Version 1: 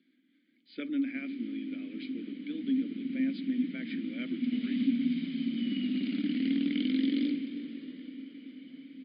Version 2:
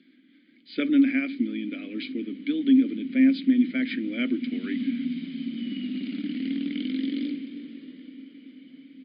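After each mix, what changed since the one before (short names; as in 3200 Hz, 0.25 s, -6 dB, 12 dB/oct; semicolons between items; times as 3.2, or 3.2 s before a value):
speech +11.5 dB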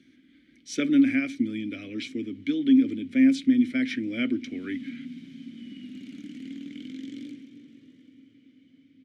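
background -10.0 dB; master: remove brick-wall FIR band-pass 160–5000 Hz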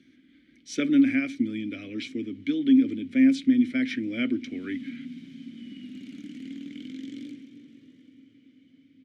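speech: add high shelf 8300 Hz -5 dB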